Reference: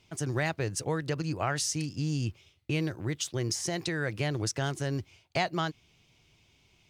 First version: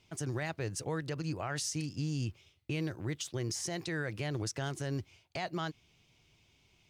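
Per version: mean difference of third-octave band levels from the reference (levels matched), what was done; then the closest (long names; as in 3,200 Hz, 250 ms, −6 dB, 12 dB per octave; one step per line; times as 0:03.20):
1.5 dB: brickwall limiter −23.5 dBFS, peak gain reduction 7.5 dB
level −3 dB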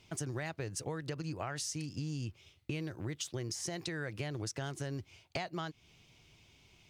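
3.0 dB: downward compressor 5 to 1, threshold −38 dBFS, peak gain reduction 13 dB
level +1.5 dB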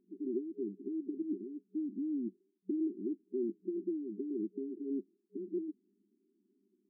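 21.0 dB: brick-wall band-pass 190–410 Hz
level +1 dB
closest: first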